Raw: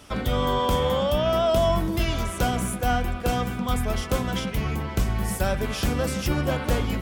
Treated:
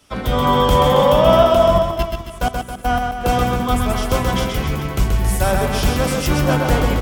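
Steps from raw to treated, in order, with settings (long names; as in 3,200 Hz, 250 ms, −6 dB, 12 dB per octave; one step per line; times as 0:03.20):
dynamic equaliser 880 Hz, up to +5 dB, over −36 dBFS, Q 1.4
0:01.43–0:03.21: output level in coarse steps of 21 dB
reverse bouncing-ball delay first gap 130 ms, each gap 1.1×, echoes 5
multiband upward and downward expander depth 40%
level +5 dB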